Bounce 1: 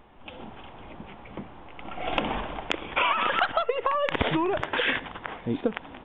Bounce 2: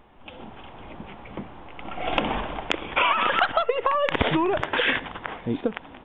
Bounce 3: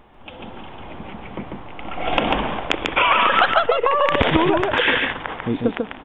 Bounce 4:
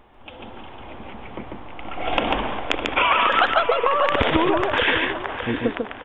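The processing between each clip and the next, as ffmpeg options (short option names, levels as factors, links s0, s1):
-af "dynaudnorm=f=120:g=11:m=1.41"
-af "aecho=1:1:144:0.668,volume=1.58"
-filter_complex "[0:a]equalizer=f=170:w=4:g=-10,asplit=2[s0][s1];[s1]adelay=609,lowpass=f=3200:p=1,volume=0.299,asplit=2[s2][s3];[s3]adelay=609,lowpass=f=3200:p=1,volume=0.36,asplit=2[s4][s5];[s5]adelay=609,lowpass=f=3200:p=1,volume=0.36,asplit=2[s6][s7];[s7]adelay=609,lowpass=f=3200:p=1,volume=0.36[s8];[s0][s2][s4][s6][s8]amix=inputs=5:normalize=0,volume=0.794"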